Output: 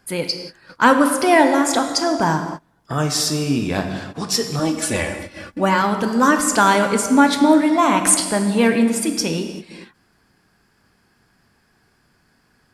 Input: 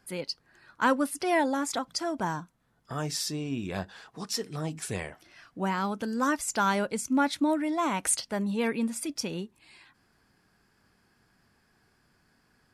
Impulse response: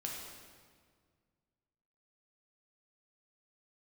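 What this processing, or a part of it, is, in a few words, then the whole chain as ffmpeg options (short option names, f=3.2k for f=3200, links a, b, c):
keyed gated reverb: -filter_complex "[0:a]asplit=3[a][b][c];[1:a]atrim=start_sample=2205[d];[b][d]afir=irnorm=-1:irlink=0[e];[c]apad=whole_len=561545[f];[e][f]sidechaingate=range=-29dB:threshold=-54dB:ratio=16:detection=peak,volume=1dB[g];[a][g]amix=inputs=2:normalize=0,asettb=1/sr,asplit=3[h][i][j];[h]atrim=end=4.594[k];[i]atrim=start=4.59:end=5.82,asetpts=PTS-STARTPTS,afade=t=in:d=0.004:c=qsin,afade=t=out:st=1.226:d=0.004:c=qsin,aecho=1:1:3.5:0.78,atrim=end_sample=54243[l];[j]atrim=start=5.816[m];[k][l]acrossfade=d=0.004:c1=hsin:c2=qsin[n];[n][m]acrossfade=d=0.004:c1=qsin:c2=hsin,volume=6.5dB"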